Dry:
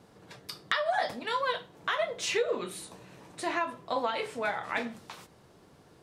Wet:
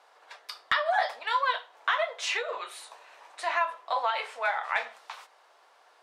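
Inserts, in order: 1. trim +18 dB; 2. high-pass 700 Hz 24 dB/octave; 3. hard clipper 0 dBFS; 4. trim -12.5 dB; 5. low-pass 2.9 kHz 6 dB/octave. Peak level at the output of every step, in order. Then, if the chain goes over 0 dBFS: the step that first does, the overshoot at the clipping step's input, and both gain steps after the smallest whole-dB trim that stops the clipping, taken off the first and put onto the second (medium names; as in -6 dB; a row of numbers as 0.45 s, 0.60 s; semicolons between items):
+5.5 dBFS, +7.5 dBFS, 0.0 dBFS, -12.5 dBFS, -13.0 dBFS; step 1, 7.5 dB; step 1 +10 dB, step 4 -4.5 dB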